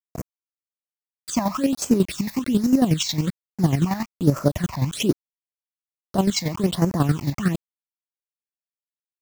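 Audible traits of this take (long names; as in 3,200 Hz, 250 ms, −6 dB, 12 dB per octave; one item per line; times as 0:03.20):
a quantiser's noise floor 6 bits, dither none
phaser sweep stages 8, 1.2 Hz, lowest notch 390–3,500 Hz
chopped level 11 Hz, depth 60%, duty 30%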